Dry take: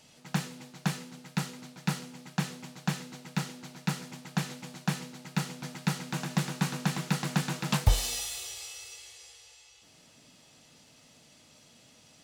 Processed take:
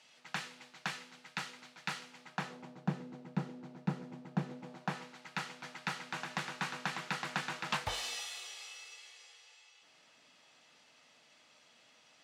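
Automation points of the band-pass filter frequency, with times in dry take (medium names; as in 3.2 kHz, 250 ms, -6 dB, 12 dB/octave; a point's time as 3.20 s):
band-pass filter, Q 0.71
2.15 s 2 kHz
2.85 s 360 Hz
4.53 s 360 Hz
5.19 s 1.6 kHz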